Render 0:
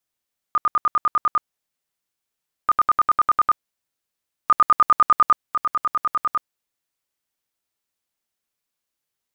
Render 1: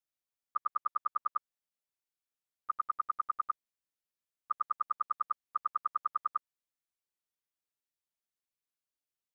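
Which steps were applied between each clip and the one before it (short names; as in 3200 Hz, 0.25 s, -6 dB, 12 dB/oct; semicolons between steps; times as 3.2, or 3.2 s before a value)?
limiter -20 dBFS, peak gain reduction 11 dB; level quantiser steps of 24 dB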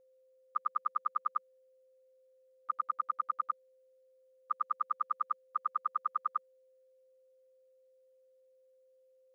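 elliptic high-pass 190 Hz; whine 520 Hz -64 dBFS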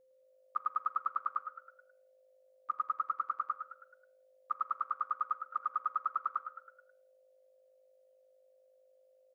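frequency-shifting echo 0.107 s, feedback 45%, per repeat +51 Hz, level -9 dB; shoebox room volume 880 m³, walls furnished, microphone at 0.6 m; gain -1 dB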